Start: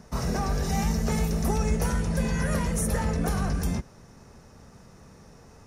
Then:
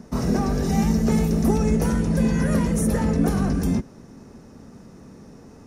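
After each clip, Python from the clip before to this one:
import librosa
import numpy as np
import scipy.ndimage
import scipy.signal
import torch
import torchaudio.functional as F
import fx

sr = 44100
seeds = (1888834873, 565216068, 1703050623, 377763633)

y = fx.peak_eq(x, sr, hz=270.0, db=12.5, octaves=1.4)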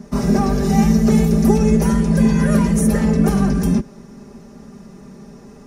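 y = x + 0.77 * np.pad(x, (int(5.0 * sr / 1000.0), 0))[:len(x)]
y = y * librosa.db_to_amplitude(2.5)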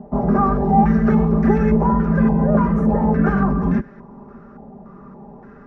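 y = fx.filter_held_lowpass(x, sr, hz=3.5, low_hz=770.0, high_hz=1700.0)
y = y * librosa.db_to_amplitude(-2.0)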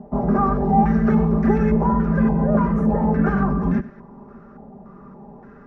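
y = x + 10.0 ** (-18.0 / 20.0) * np.pad(x, (int(94 * sr / 1000.0), 0))[:len(x)]
y = y * librosa.db_to_amplitude(-2.0)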